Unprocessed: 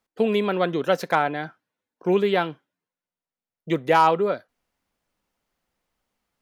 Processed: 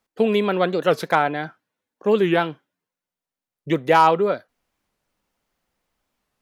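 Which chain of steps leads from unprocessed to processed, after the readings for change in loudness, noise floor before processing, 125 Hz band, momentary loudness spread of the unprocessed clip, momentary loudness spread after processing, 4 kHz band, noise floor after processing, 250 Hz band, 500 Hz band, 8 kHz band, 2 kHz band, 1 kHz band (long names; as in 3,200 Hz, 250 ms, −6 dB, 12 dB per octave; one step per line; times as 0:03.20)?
+2.5 dB, below −85 dBFS, +2.5 dB, 13 LU, 13 LU, +2.0 dB, below −85 dBFS, +2.5 dB, +2.5 dB, can't be measured, +2.5 dB, +2.5 dB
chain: wow of a warped record 45 rpm, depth 250 cents
level +2.5 dB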